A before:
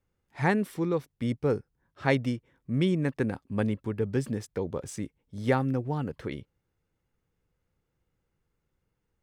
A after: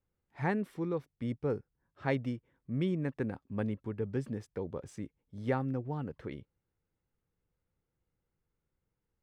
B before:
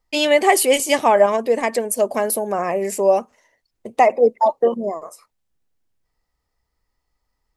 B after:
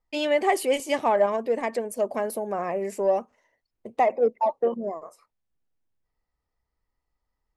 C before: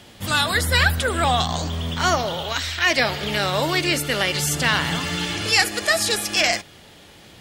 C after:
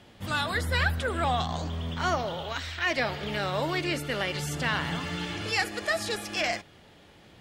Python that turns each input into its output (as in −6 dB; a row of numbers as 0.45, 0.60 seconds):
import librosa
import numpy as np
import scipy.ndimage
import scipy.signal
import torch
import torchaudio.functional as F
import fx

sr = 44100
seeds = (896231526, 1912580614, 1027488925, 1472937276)

p1 = fx.high_shelf(x, sr, hz=4000.0, db=-11.0)
p2 = 10.0 ** (-15.5 / 20.0) * np.tanh(p1 / 10.0 ** (-15.5 / 20.0))
p3 = p1 + (p2 * 10.0 ** (-12.0 / 20.0))
y = p3 * 10.0 ** (-8.0 / 20.0)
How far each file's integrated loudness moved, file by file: −6.5, −7.5, −9.0 LU